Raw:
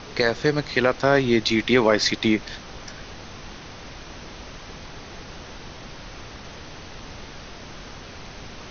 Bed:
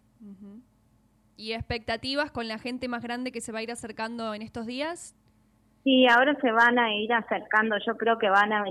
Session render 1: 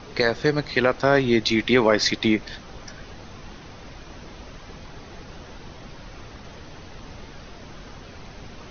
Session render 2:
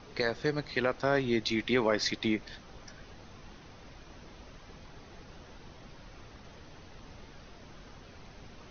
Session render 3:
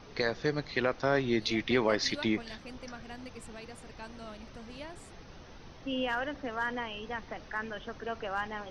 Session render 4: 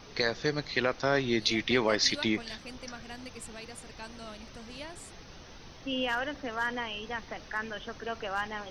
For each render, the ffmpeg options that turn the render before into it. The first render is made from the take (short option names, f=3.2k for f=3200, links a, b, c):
-af "afftdn=nr=6:nf=-40"
-af "volume=-9.5dB"
-filter_complex "[1:a]volume=-13.5dB[a];[0:a][a]amix=inputs=2:normalize=0"
-af "highshelf=f=2.9k:g=8.5"